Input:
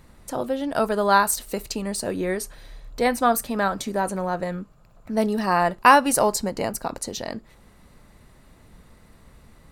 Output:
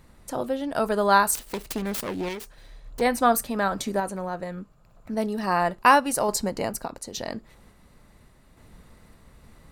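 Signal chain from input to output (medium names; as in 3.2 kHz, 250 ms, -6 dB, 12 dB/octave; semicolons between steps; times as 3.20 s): 1.35–3.01 s: self-modulated delay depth 0.59 ms; random-step tremolo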